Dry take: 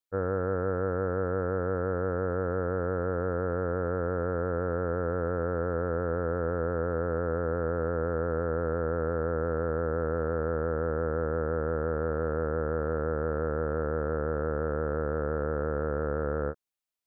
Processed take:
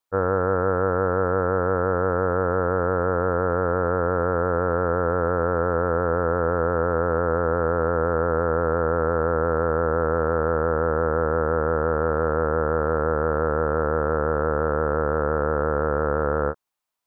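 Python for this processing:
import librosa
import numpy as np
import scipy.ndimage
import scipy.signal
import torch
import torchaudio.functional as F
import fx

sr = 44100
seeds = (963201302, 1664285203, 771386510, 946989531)

y = fx.peak_eq(x, sr, hz=980.0, db=9.5, octaves=1.1)
y = y * 10.0 ** (5.0 / 20.0)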